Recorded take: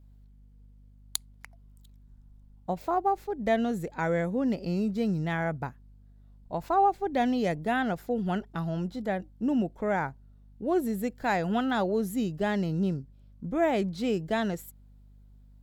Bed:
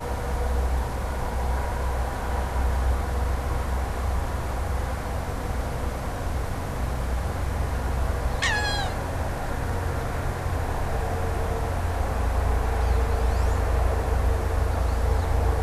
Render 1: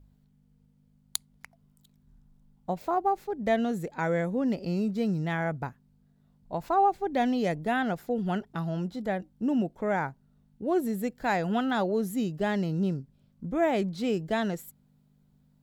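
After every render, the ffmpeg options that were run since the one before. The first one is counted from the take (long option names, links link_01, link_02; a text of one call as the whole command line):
ffmpeg -i in.wav -af "bandreject=frequency=50:width_type=h:width=4,bandreject=frequency=100:width_type=h:width=4" out.wav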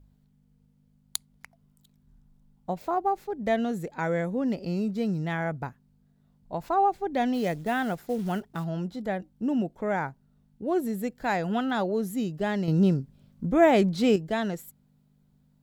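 ffmpeg -i in.wav -filter_complex "[0:a]asplit=3[link_01][link_02][link_03];[link_01]afade=type=out:start_time=7.33:duration=0.02[link_04];[link_02]acrusher=bits=6:mode=log:mix=0:aa=0.000001,afade=type=in:start_time=7.33:duration=0.02,afade=type=out:start_time=8.63:duration=0.02[link_05];[link_03]afade=type=in:start_time=8.63:duration=0.02[link_06];[link_04][link_05][link_06]amix=inputs=3:normalize=0,asplit=3[link_07][link_08][link_09];[link_07]atrim=end=12.682[link_10];[link_08]atrim=start=12.678:end=14.162,asetpts=PTS-STARTPTS,volume=6.5dB[link_11];[link_09]atrim=start=14.158[link_12];[link_10][link_11]acrossfade=duration=0.004:curve1=hsin:curve2=hsin[link_13];[link_13][link_12]acrossfade=duration=0.004:curve1=hsin:curve2=hsin" out.wav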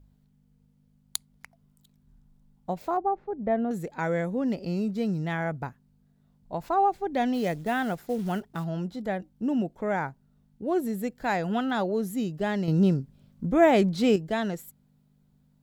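ffmpeg -i in.wav -filter_complex "[0:a]asettb=1/sr,asplit=3[link_01][link_02][link_03];[link_01]atrim=end=2.974[link_04];[link_02]atrim=start=2.97:end=3.71,asetpts=PTS-STARTPTS,afade=type=in:duration=0.004:curve=qsin,afade=type=out:start_time=0.736:duration=0.004:curve=qsin,lowpass=1200[link_05];[link_03]atrim=start=3.706[link_06];[link_04][link_05]acrossfade=duration=0.004:curve1=hsin:curve2=qsin[link_07];[link_07][link_06]acrossfade=duration=0.004:curve1=qsin:curve2=hsin" out.wav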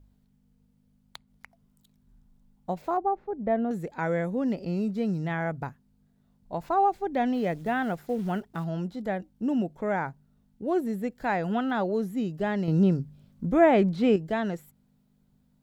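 ffmpeg -i in.wav -filter_complex "[0:a]acrossover=split=3000[link_01][link_02];[link_02]acompressor=threshold=-54dB:ratio=4:attack=1:release=60[link_03];[link_01][link_03]amix=inputs=2:normalize=0,bandreject=frequency=74.32:width_type=h:width=4,bandreject=frequency=148.64:width_type=h:width=4" out.wav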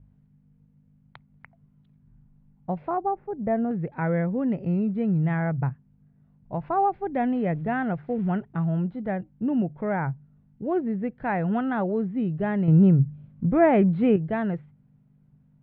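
ffmpeg -i in.wav -af "lowpass=frequency=2500:width=0.5412,lowpass=frequency=2500:width=1.3066,equalizer=frequency=130:width=2:gain=14.5" out.wav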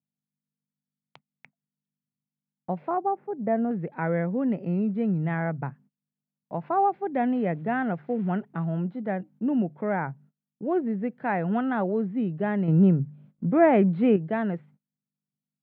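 ffmpeg -i in.wav -af "highpass=frequency=170:width=0.5412,highpass=frequency=170:width=1.3066,agate=range=-28dB:threshold=-52dB:ratio=16:detection=peak" out.wav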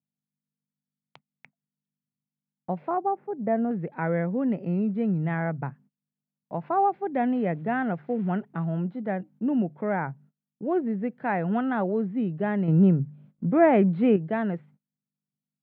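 ffmpeg -i in.wav -af anull out.wav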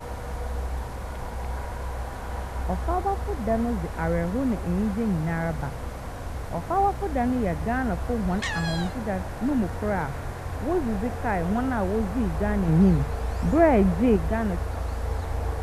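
ffmpeg -i in.wav -i bed.wav -filter_complex "[1:a]volume=-5.5dB[link_01];[0:a][link_01]amix=inputs=2:normalize=0" out.wav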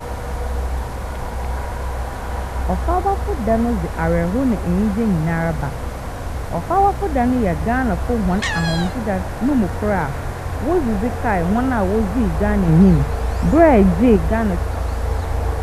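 ffmpeg -i in.wav -af "volume=7.5dB,alimiter=limit=-2dB:level=0:latency=1" out.wav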